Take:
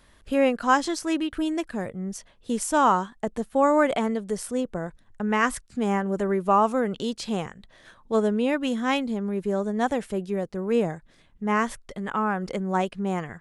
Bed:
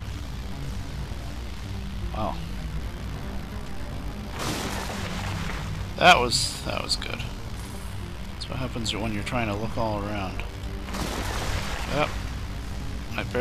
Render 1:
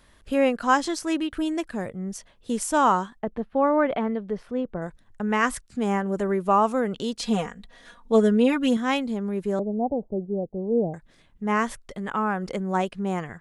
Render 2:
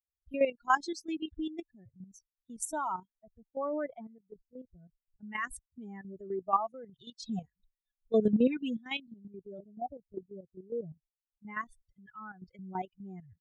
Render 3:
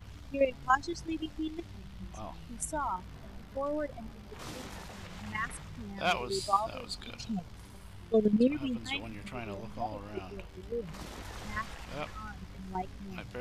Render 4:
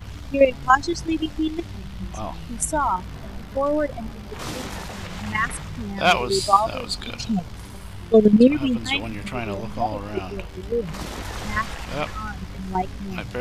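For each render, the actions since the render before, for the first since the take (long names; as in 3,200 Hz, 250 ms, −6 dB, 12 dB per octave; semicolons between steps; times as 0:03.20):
0:03.19–0:04.82: high-frequency loss of the air 340 metres; 0:07.18–0:08.77: comb filter 4.2 ms, depth 91%; 0:09.59–0:10.94: Butterworth low-pass 790 Hz 48 dB per octave
spectral dynamics exaggerated over time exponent 3; output level in coarse steps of 11 dB
mix in bed −14.5 dB
level +12 dB; brickwall limiter −3 dBFS, peak gain reduction 2 dB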